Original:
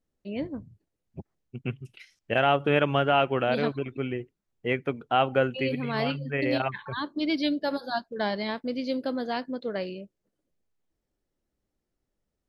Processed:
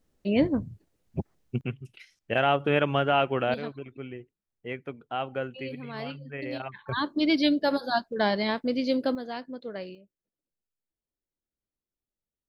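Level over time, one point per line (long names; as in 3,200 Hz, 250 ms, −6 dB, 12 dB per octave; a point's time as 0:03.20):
+9.5 dB
from 0:01.61 −1 dB
from 0:03.54 −8.5 dB
from 0:06.89 +3.5 dB
from 0:09.15 −5.5 dB
from 0:09.95 −14 dB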